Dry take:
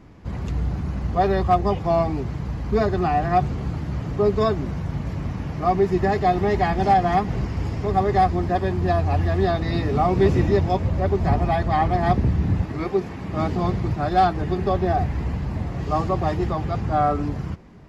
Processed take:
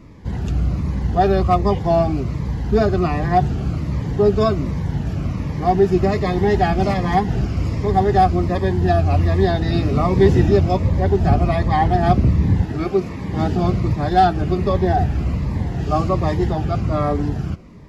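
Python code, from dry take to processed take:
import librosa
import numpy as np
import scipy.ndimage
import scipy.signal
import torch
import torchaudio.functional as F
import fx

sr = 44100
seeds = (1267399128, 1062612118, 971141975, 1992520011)

y = fx.notch_cascade(x, sr, direction='falling', hz=1.3)
y = y * 10.0 ** (5.0 / 20.0)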